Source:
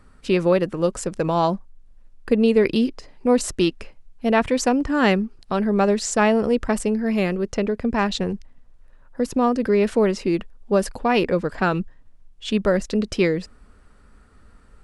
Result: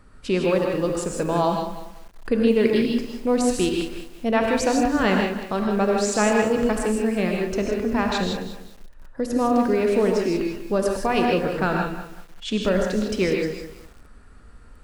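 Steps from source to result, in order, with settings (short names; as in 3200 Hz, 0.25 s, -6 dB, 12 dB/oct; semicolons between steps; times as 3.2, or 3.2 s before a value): in parallel at -3 dB: compressor, threshold -32 dBFS, peak gain reduction 18.5 dB; on the sum: non-linear reverb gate 0.18 s rising, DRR 1 dB; lo-fi delay 0.193 s, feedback 35%, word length 6-bit, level -11 dB; gain -4.5 dB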